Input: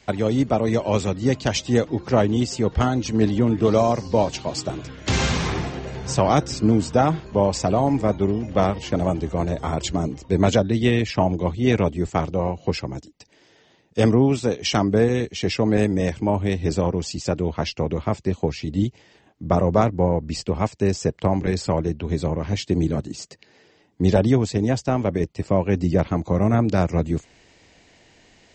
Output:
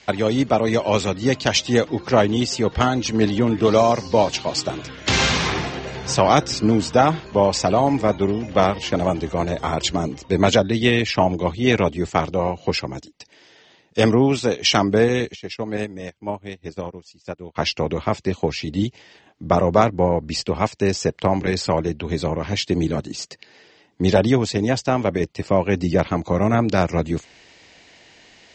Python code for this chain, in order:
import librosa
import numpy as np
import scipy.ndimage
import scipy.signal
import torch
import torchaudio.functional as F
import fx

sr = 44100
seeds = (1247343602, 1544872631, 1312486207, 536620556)

y = scipy.signal.sosfilt(scipy.signal.butter(2, 5200.0, 'lowpass', fs=sr, output='sos'), x)
y = fx.tilt_eq(y, sr, slope=2.0)
y = fx.upward_expand(y, sr, threshold_db=-41.0, expansion=2.5, at=(15.34, 17.55), fade=0.02)
y = y * 10.0 ** (4.5 / 20.0)